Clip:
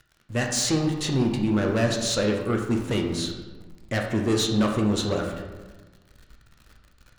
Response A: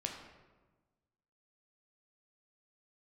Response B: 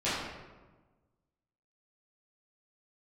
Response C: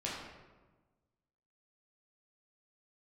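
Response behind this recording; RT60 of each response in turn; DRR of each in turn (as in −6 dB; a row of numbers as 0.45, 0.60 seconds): A; 1.3, 1.3, 1.3 seconds; 1.5, −13.0, −6.0 decibels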